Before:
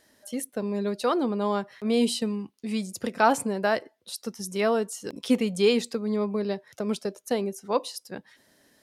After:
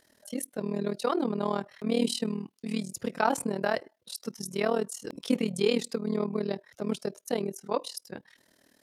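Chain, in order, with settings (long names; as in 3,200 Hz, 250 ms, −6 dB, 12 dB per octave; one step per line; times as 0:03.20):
in parallel at −2 dB: brickwall limiter −17 dBFS, peak gain reduction 9.5 dB
on the sum: amplitude modulation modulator 39 Hz, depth 80%
level −4 dB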